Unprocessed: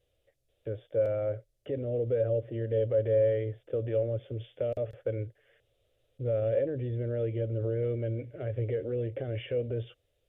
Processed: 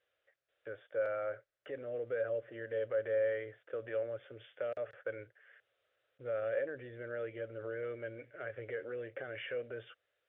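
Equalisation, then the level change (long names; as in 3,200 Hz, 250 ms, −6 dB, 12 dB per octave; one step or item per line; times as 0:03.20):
resonant band-pass 1,500 Hz, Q 2.9
+10.0 dB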